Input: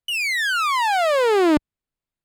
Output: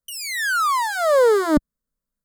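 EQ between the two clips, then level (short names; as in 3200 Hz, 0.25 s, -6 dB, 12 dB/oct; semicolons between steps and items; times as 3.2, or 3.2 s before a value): low shelf 380 Hz +9 dB; high shelf 7500 Hz +5 dB; fixed phaser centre 520 Hz, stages 8; +1.5 dB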